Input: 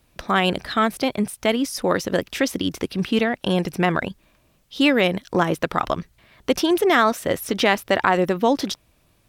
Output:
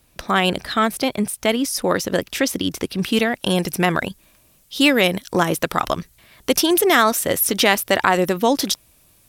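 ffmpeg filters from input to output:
-af "asetnsamples=n=441:p=0,asendcmd='3.04 equalizer g 14.5',equalizer=f=12000:t=o:w=1.8:g=7,volume=1.12"

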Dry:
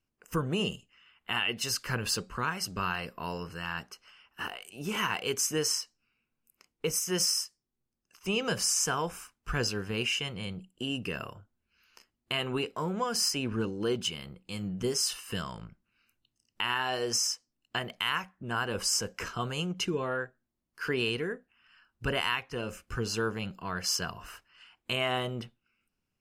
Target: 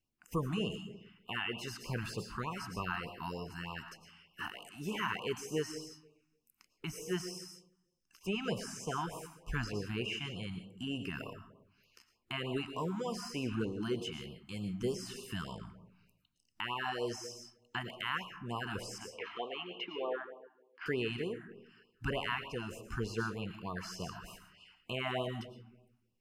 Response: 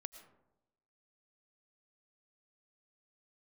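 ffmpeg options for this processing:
-filter_complex "[0:a]asettb=1/sr,asplit=3[s0][s1][s2];[s0]atrim=end=18.984[s3];[s1]atrim=start=18.98:end=20.86,asetpts=PTS-STARTPTS,afade=t=in:d=0.004:c=qsin,afade=t=out:st=1.876:d=0.004:c=qsin,highpass=f=310:w=0.5412,highpass=f=310:w=1.3066,equalizer=f=320:t=q:w=4:g=-4,equalizer=f=480:t=q:w=4:g=4,equalizer=f=790:t=q:w=4:g=5,equalizer=f=1500:t=q:w=4:g=-9,equalizer=f=2200:t=q:w=4:g=4,equalizer=f=3200:t=q:w=4:g=5,lowpass=f=3300:w=0.5412,lowpass=f=3300:w=1.3066[s4];[s2]atrim=start=20.856[s5];[s3][s4]acrossfade=d=0.004:c1=hsin:c2=qsin[s6];[s6][s5]acrossfade=d=0.004:c1=qsin:c2=hsin[s7];[1:a]atrim=start_sample=2205[s8];[s7][s8]afir=irnorm=-1:irlink=0,acrossover=split=2500[s9][s10];[s10]acompressor=threshold=0.00355:ratio=4:attack=1:release=60[s11];[s9][s11]amix=inputs=2:normalize=0,afftfilt=real='re*(1-between(b*sr/1024,450*pow(1800/450,0.5+0.5*sin(2*PI*3.3*pts/sr))/1.41,450*pow(1800/450,0.5+0.5*sin(2*PI*3.3*pts/sr))*1.41))':imag='im*(1-between(b*sr/1024,450*pow(1800/450,0.5+0.5*sin(2*PI*3.3*pts/sr))/1.41,450*pow(1800/450,0.5+0.5*sin(2*PI*3.3*pts/sr))*1.41))':win_size=1024:overlap=0.75,volume=1.12"

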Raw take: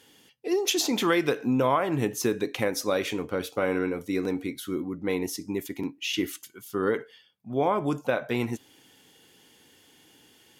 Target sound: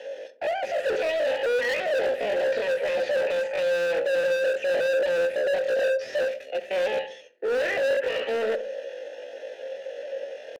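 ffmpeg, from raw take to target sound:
-filter_complex "[0:a]aeval=exprs='if(lt(val(0),0),0.251*val(0),val(0))':c=same,highpass=f=93:p=1,equalizer=f=290:w=2:g=5.5,acrossover=split=370|1200[s0][s1][s2];[s0]acontrast=24[s3];[s3][s1][s2]amix=inputs=3:normalize=0,asplit=2[s4][s5];[s5]highpass=f=720:p=1,volume=89.1,asoftclip=type=tanh:threshold=0.299[s6];[s4][s6]amix=inputs=2:normalize=0,lowpass=f=1500:p=1,volume=0.501,asetrate=83250,aresample=44100,atempo=0.529732,asplit=3[s7][s8][s9];[s7]bandpass=f=530:t=q:w=8,volume=1[s10];[s8]bandpass=f=1840:t=q:w=8,volume=0.501[s11];[s9]bandpass=f=2480:t=q:w=8,volume=0.355[s12];[s10][s11][s12]amix=inputs=3:normalize=0,bass=f=250:g=7,treble=f=4000:g=-4,asoftclip=type=hard:threshold=0.0422,asplit=2[s13][s14];[s14]adelay=64,lowpass=f=960:p=1,volume=0.266,asplit=2[s15][s16];[s16]adelay=64,lowpass=f=960:p=1,volume=0.47,asplit=2[s17][s18];[s18]adelay=64,lowpass=f=960:p=1,volume=0.47,asplit=2[s19][s20];[s20]adelay=64,lowpass=f=960:p=1,volume=0.47,asplit=2[s21][s22];[s22]adelay=64,lowpass=f=960:p=1,volume=0.47[s23];[s13][s15][s17][s19][s21][s23]amix=inputs=6:normalize=0,volume=1.78"

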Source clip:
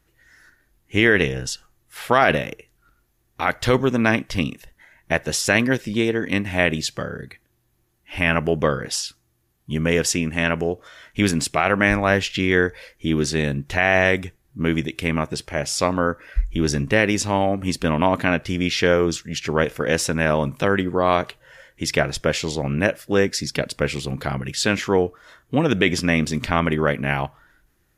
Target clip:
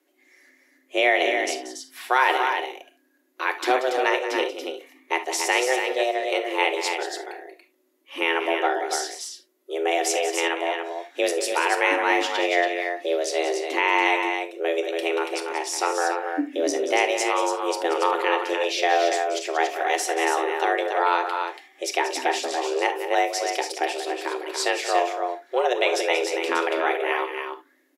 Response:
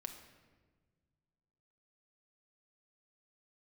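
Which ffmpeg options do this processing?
-filter_complex "[0:a]afreqshift=250,aecho=1:1:183.7|282.8:0.282|0.501[s0];[1:a]atrim=start_sample=2205,atrim=end_sample=3528[s1];[s0][s1]afir=irnorm=-1:irlink=0"

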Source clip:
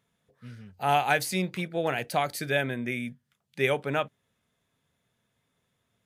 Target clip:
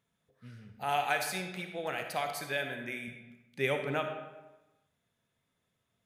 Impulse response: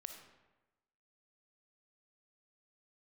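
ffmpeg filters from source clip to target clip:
-filter_complex "[0:a]asettb=1/sr,asplit=3[s0][s1][s2];[s0]atrim=end=0.844[s3];[s1]atrim=start=0.84:end=3.08,asetpts=PTS-STARTPTS,afade=t=in:d=0.004:c=qsin,afade=t=out:st=2.236:d=0.004:c=qsin,lowshelf=f=500:g=-8[s4];[s2]atrim=start=3.076[s5];[s3][s4]acrossfade=d=0.004:c1=hsin:c2=qsin[s6];[s6][s5]acrossfade=d=0.004:c1=qsin:c2=hsin[s7];[1:a]atrim=start_sample=2205[s8];[s7][s8]afir=irnorm=-1:irlink=0"

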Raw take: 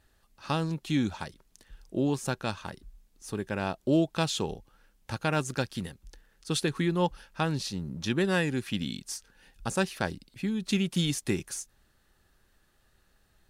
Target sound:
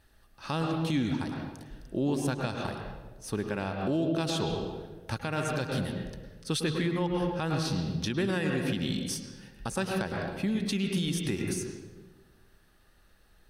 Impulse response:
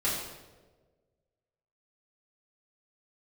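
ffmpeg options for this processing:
-filter_complex "[0:a]asplit=2[s0][s1];[1:a]atrim=start_sample=2205,lowpass=4000,adelay=102[s2];[s1][s2]afir=irnorm=-1:irlink=0,volume=0.237[s3];[s0][s3]amix=inputs=2:normalize=0,alimiter=limit=0.075:level=0:latency=1:release=169,bandreject=f=7100:w=6.4,volume=1.33"

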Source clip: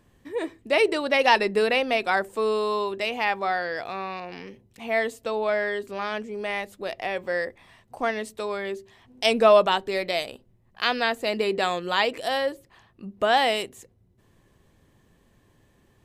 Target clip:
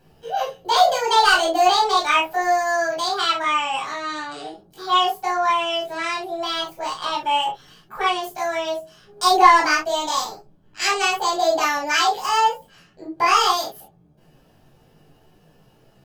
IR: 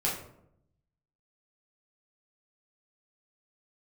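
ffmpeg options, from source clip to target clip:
-filter_complex "[0:a]acontrast=88,asetrate=72056,aresample=44100,atempo=0.612027[s0];[1:a]atrim=start_sample=2205,atrim=end_sample=3528[s1];[s0][s1]afir=irnorm=-1:irlink=0,volume=0.355"

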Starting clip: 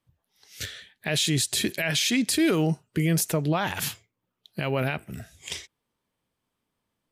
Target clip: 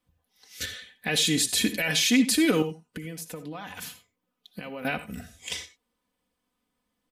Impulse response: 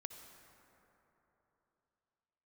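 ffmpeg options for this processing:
-filter_complex "[0:a]aecho=1:1:4:0.8,asettb=1/sr,asplit=3[s0][s1][s2];[s0]atrim=end=2.624[s3];[s1]atrim=start=2.62:end=4.85,asetpts=PTS-STARTPTS,afade=t=in:d=0.004:c=qsin,afade=t=out:st=2.226:d=0.004:c=qsin,acompressor=threshold=0.0178:ratio=6[s4];[s2]atrim=start=4.846[s5];[s3][s4]acrossfade=d=0.004:c1=hsin:c2=qsin[s6];[s6][s5]acrossfade=d=0.004:c1=qsin:c2=hsin[s7];[1:a]atrim=start_sample=2205,afade=t=out:st=0.15:d=0.01,atrim=end_sample=7056[s8];[s7][s8]afir=irnorm=-1:irlink=0,volume=1.58"

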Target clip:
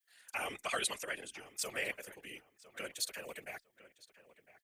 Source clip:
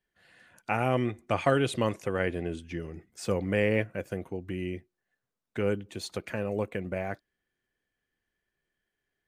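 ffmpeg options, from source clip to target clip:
-filter_complex "[0:a]aderivative,afftfilt=real='hypot(re,im)*cos(2*PI*random(0))':imag='hypot(re,im)*sin(2*PI*random(1))':win_size=512:overlap=0.75,atempo=2,afreqshift=13,asplit=2[s0][s1];[s1]adelay=1005,lowpass=f=2800:p=1,volume=0.15,asplit=2[s2][s3];[s3]adelay=1005,lowpass=f=2800:p=1,volume=0.23[s4];[s2][s4]amix=inputs=2:normalize=0[s5];[s0][s5]amix=inputs=2:normalize=0,volume=5.01"

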